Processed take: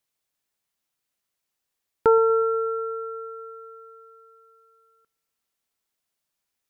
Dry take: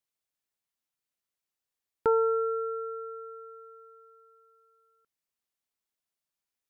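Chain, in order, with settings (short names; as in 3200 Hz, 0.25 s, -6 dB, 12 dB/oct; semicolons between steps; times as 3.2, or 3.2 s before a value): dark delay 0.121 s, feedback 72%, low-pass 1600 Hz, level -21 dB; gain +7 dB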